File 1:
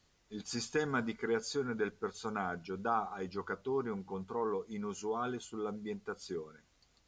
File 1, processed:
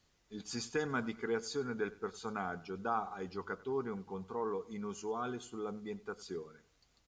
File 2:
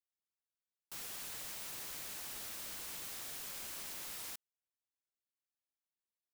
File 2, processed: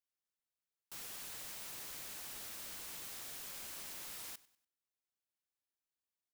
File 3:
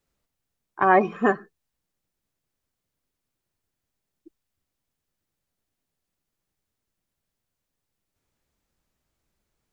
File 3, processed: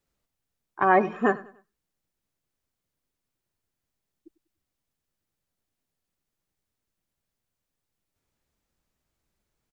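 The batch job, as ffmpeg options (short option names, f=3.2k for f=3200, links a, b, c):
-af "aecho=1:1:97|194|291:0.1|0.037|0.0137,volume=-2dB"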